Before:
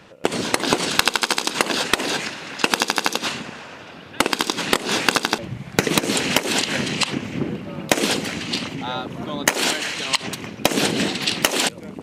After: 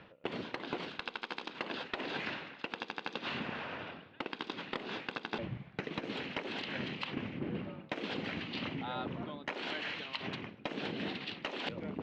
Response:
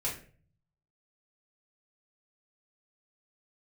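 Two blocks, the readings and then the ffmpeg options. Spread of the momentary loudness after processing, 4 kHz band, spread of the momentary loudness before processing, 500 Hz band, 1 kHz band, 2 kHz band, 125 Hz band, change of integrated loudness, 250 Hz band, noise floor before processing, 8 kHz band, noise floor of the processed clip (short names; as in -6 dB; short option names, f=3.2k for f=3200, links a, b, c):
4 LU, -20.0 dB, 9 LU, -16.5 dB, -17.5 dB, -17.0 dB, -14.0 dB, -18.5 dB, -15.5 dB, -40 dBFS, under -40 dB, -56 dBFS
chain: -af "areverse,acompressor=threshold=-31dB:ratio=12,areverse,lowpass=f=3.6k:w=0.5412,lowpass=f=3.6k:w=1.3066,volume=-3.5dB"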